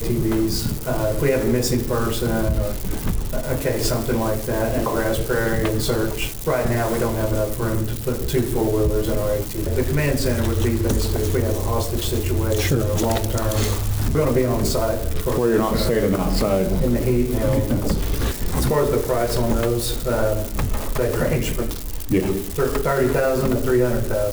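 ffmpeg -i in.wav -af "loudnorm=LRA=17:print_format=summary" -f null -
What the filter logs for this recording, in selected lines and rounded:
Input Integrated:    -21.6 LUFS
Input True Peak:      -7.7 dBTP
Input LRA:             2.1 LU
Input Threshold:     -31.6 LUFS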